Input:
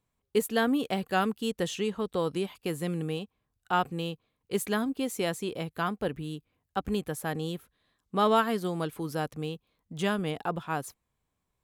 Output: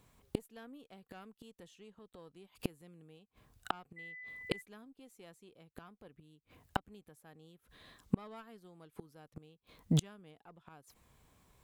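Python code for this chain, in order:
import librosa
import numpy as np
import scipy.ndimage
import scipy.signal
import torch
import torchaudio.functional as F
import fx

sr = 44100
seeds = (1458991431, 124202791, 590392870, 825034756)

y = fx.diode_clip(x, sr, knee_db=-20.5)
y = fx.gate_flip(y, sr, shuts_db=-31.0, range_db=-39)
y = fx.dmg_tone(y, sr, hz=2000.0, level_db=-60.0, at=(3.96, 4.6), fade=0.02)
y = y * librosa.db_to_amplitude(14.0)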